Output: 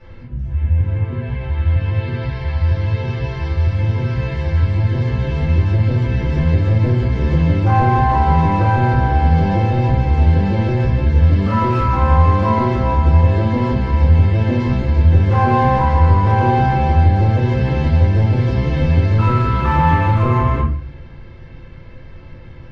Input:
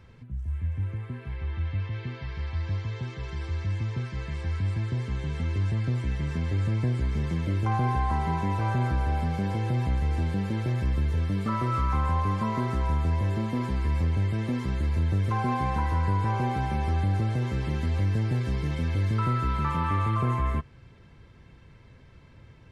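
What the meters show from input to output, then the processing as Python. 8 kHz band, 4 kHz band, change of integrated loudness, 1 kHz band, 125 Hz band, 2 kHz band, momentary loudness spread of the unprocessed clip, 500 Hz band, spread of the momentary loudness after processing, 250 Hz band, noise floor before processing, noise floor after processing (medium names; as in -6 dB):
no reading, +8.5 dB, +12.5 dB, +13.0 dB, +12.5 dB, +11.5 dB, 7 LU, +14.5 dB, 7 LU, +11.5 dB, -52 dBFS, -36 dBFS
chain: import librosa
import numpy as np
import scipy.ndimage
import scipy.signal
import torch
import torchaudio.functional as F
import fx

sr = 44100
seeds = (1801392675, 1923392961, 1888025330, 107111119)

p1 = scipy.signal.sosfilt(scipy.signal.butter(4, 5300.0, 'lowpass', fs=sr, output='sos'), x)
p2 = np.clip(10.0 ** (28.5 / 20.0) * p1, -1.0, 1.0) / 10.0 ** (28.5 / 20.0)
p3 = p1 + F.gain(torch.from_numpy(p2), -8.5).numpy()
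p4 = fx.room_shoebox(p3, sr, seeds[0], volume_m3=37.0, walls='mixed', distance_m=2.2)
y = F.gain(torch.from_numpy(p4), -2.5).numpy()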